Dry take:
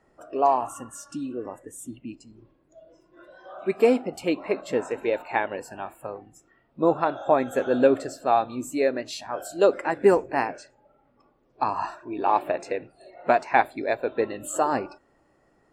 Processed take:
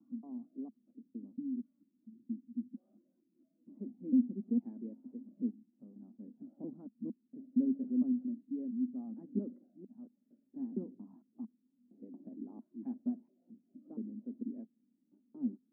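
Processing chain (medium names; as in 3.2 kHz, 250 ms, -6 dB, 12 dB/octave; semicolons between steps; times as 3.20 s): slices played last to first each 229 ms, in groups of 4; vibrato 4.9 Hz 37 cents; Butterworth band-pass 230 Hz, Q 4.2; trim +1 dB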